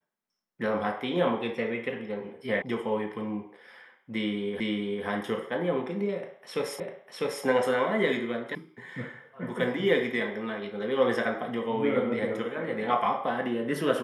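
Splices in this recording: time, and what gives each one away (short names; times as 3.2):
2.62 sound cut off
4.6 repeat of the last 0.45 s
6.8 repeat of the last 0.65 s
8.55 sound cut off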